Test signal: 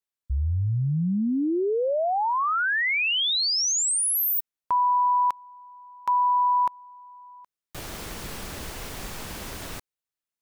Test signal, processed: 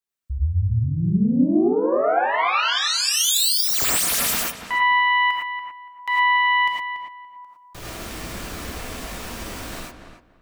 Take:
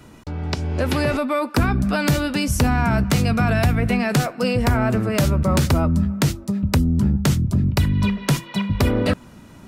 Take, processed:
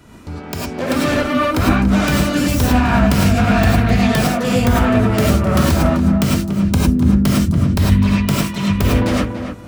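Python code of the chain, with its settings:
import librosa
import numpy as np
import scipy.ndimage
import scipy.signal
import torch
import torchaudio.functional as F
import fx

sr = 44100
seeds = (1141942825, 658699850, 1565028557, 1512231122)

y = fx.self_delay(x, sr, depth_ms=0.19)
y = fx.echo_filtered(y, sr, ms=286, feedback_pct=22, hz=2200.0, wet_db=-8.0)
y = fx.rev_gated(y, sr, seeds[0], gate_ms=130, shape='rising', drr_db=-4.5)
y = F.gain(torch.from_numpy(y), -1.0).numpy()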